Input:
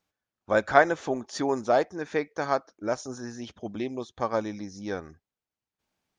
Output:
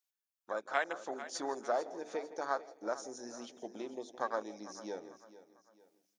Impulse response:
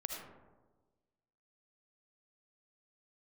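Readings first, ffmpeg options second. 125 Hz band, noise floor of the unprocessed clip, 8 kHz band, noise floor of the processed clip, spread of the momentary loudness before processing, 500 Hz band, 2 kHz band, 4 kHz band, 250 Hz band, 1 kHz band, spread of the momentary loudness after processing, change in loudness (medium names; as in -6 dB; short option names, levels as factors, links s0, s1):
under -20 dB, under -85 dBFS, -4.5 dB, under -85 dBFS, 16 LU, -11.5 dB, -11.0 dB, -7.5 dB, -13.5 dB, -10.5 dB, 12 LU, -11.5 dB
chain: -filter_complex "[0:a]acompressor=threshold=0.01:ratio=2,lowshelf=f=470:g=9.5,bandreject=f=50:t=h:w=6,bandreject=f=100:t=h:w=6,bandreject=f=150:t=h:w=6,bandreject=f=200:t=h:w=6,bandreject=f=250:t=h:w=6,bandreject=f=300:t=h:w=6,bandreject=f=350:t=h:w=6,bandreject=f=400:t=h:w=6,bandreject=f=450:t=h:w=6,asplit=2[s0][s1];[s1]adelay=163,lowpass=f=4000:p=1,volume=0.178,asplit=2[s2][s3];[s3]adelay=163,lowpass=f=4000:p=1,volume=0.42,asplit=2[s4][s5];[s5]adelay=163,lowpass=f=4000:p=1,volume=0.42,asplit=2[s6][s7];[s7]adelay=163,lowpass=f=4000:p=1,volume=0.42[s8];[s2][s4][s6][s8]amix=inputs=4:normalize=0[s9];[s0][s9]amix=inputs=2:normalize=0,afwtdn=0.0158,highpass=270,asplit=2[s10][s11];[s11]aecho=0:1:447|894|1341:0.158|0.0602|0.0229[s12];[s10][s12]amix=inputs=2:normalize=0,dynaudnorm=f=380:g=5:m=1.78,aderivative,volume=4.73"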